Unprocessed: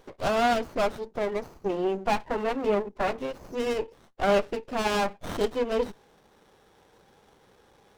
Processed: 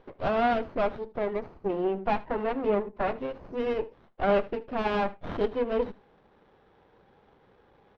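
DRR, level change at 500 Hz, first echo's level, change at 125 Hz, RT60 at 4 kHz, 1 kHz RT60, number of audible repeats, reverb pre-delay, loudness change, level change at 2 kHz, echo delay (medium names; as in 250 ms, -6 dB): no reverb, -1.0 dB, -20.0 dB, 0.0 dB, no reverb, no reverb, 1, no reverb, -1.5 dB, -3.0 dB, 77 ms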